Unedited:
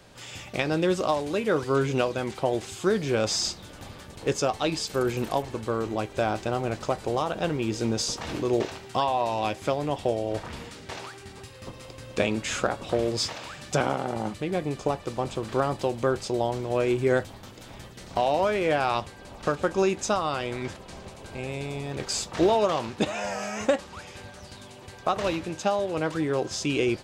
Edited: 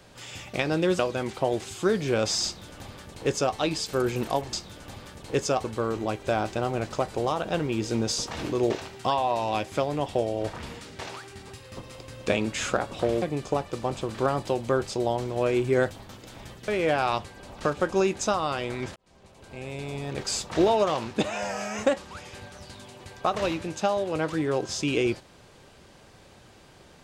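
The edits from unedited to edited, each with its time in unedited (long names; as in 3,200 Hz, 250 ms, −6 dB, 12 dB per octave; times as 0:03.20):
0:00.99–0:02.00: remove
0:03.46–0:04.57: duplicate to 0:05.54
0:13.12–0:14.56: remove
0:18.02–0:18.50: remove
0:20.78–0:21.84: fade in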